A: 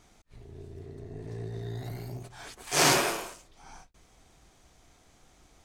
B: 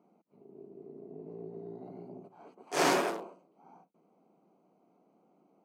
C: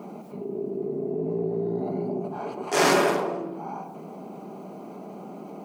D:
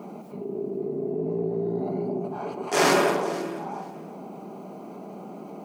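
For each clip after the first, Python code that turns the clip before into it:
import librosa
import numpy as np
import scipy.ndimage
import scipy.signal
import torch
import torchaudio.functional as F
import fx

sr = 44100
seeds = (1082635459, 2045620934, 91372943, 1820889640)

y1 = fx.wiener(x, sr, points=25)
y1 = scipy.signal.sosfilt(scipy.signal.ellip(4, 1.0, 60, 180.0, 'highpass', fs=sr, output='sos'), y1)
y1 = fx.high_shelf(y1, sr, hz=2400.0, db=-11.0)
y2 = fx.room_shoebox(y1, sr, seeds[0], volume_m3=2600.0, walls='furnished', distance_m=1.3)
y2 = fx.env_flatten(y2, sr, amount_pct=50)
y2 = y2 * 10.0 ** (5.5 / 20.0)
y3 = fx.echo_feedback(y2, sr, ms=486, feedback_pct=17, wet_db=-17)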